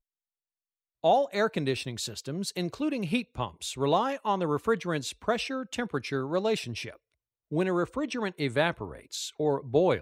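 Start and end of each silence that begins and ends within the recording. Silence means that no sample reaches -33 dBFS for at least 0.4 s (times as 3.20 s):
6.89–7.52 s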